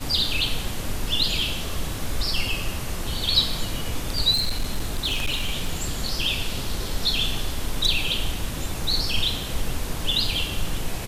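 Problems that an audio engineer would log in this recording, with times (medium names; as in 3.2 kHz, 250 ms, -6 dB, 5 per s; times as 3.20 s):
4.33–5.98 s: clipped -19 dBFS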